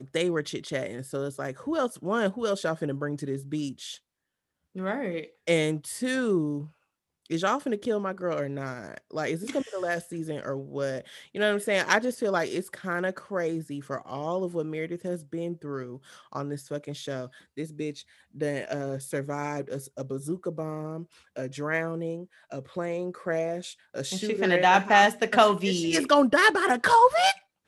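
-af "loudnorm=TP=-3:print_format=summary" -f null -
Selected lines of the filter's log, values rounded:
Input Integrated:    -26.0 LUFS
Input True Peak:      -5.4 dBTP
Input LRA:            13.0 LU
Input Threshold:     -36.5 LUFS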